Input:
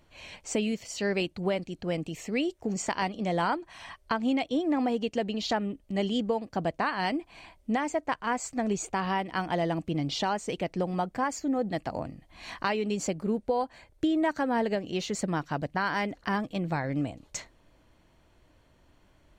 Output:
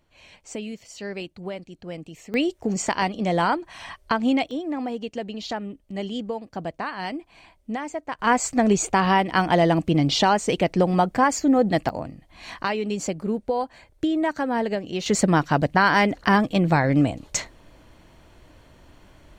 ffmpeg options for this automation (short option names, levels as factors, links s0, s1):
-af "asetnsamples=n=441:p=0,asendcmd='2.34 volume volume 6dB;4.51 volume volume -1.5dB;8.19 volume volume 10dB;11.89 volume volume 3dB;15.06 volume volume 11dB',volume=0.596"